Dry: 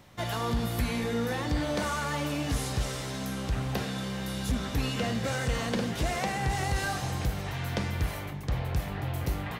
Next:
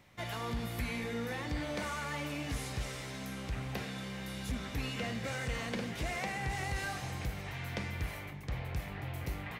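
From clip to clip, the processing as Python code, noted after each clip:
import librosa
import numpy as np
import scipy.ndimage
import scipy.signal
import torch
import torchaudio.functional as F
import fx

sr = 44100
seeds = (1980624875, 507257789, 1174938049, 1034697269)

y = fx.peak_eq(x, sr, hz=2200.0, db=7.0, octaves=0.58)
y = y * librosa.db_to_amplitude(-8.0)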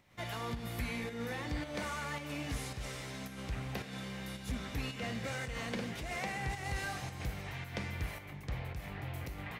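y = fx.volume_shaper(x, sr, bpm=110, per_beat=1, depth_db=-6, release_ms=107.0, shape='slow start')
y = y * librosa.db_to_amplitude(-1.0)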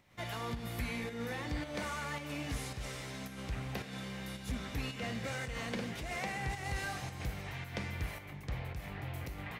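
y = x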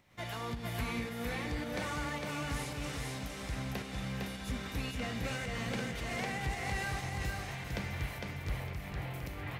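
y = fx.echo_feedback(x, sr, ms=456, feedback_pct=30, wet_db=-3.0)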